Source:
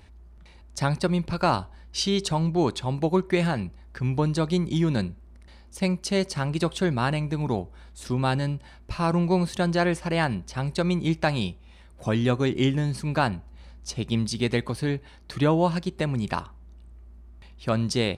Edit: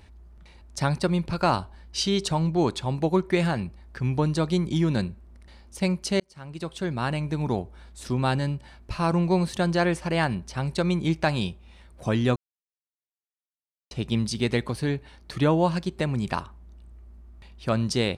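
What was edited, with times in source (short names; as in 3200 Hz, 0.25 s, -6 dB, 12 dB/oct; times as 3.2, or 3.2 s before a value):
6.2–7.36 fade in
12.36–13.91 mute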